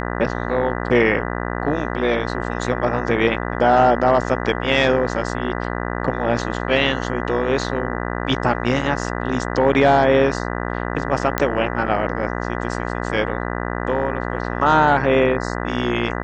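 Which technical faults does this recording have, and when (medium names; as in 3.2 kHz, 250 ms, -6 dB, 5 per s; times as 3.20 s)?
buzz 60 Hz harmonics 33 -25 dBFS
11.38 s: pop -4 dBFS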